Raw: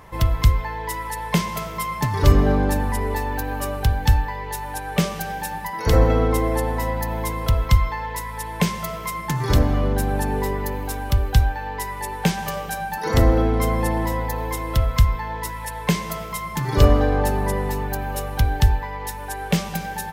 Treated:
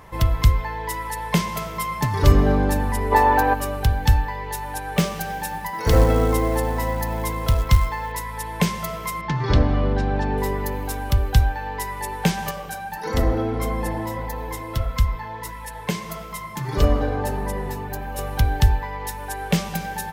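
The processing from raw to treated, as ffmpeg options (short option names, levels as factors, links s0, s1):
-filter_complex "[0:a]asplit=3[s0][s1][s2];[s0]afade=t=out:st=3.11:d=0.02[s3];[s1]equalizer=f=860:w=0.46:g=13.5,afade=t=in:st=3.11:d=0.02,afade=t=out:st=3.53:d=0.02[s4];[s2]afade=t=in:st=3.53:d=0.02[s5];[s3][s4][s5]amix=inputs=3:normalize=0,asettb=1/sr,asplit=3[s6][s7][s8];[s6]atrim=end=4.964[s9];[s7]atrim=start=4.96:end=8.12,asetpts=PTS-STARTPTS,afade=t=in:d=0.004:c=qsin,afade=t=out:st=3.156:d=0.004:c=qsin,acrusher=bits=6:mode=log:mix=0:aa=0.000001[s10];[s8]atrim=start=8.116[s11];[s9][s10]acrossfade=d=0.004:c1=hsin:c2=qsin[s12];[s12][s11]acrossfade=d=0.004:c1=qsin:c2=hsin,asettb=1/sr,asplit=3[s13][s14][s15];[s13]atrim=end=9.214[s16];[s14]atrim=start=9.21:end=10.38,asetpts=PTS-STARTPTS,afade=t=in:d=0.004:c=qsin,afade=t=out:st=1.166:d=0.004:c=qsin,lowpass=f=4900:w=0.5412,lowpass=f=4900:w=1.3066[s17];[s15]atrim=start=10.376[s18];[s16][s17]acrossfade=d=0.004:c1=hsin:c2=qsin[s19];[s19][s18]acrossfade=d=0.004:c1=qsin:c2=hsin,asettb=1/sr,asplit=3[s20][s21][s22];[s20]atrim=end=12.514[s23];[s21]atrim=start=12.51:end=18.19,asetpts=PTS-STARTPTS,afade=t=in:d=0.004:c=qsin,afade=t=out:st=5.676:d=0.004:c=qsin,flanger=delay=3.7:depth=5.7:regen=-47:speed=1.6:shape=sinusoidal[s24];[s22]atrim=start=18.186[s25];[s23][s24]acrossfade=d=0.004:c1=hsin:c2=qsin[s26];[s26][s25]acrossfade=d=0.004:c1=qsin:c2=hsin"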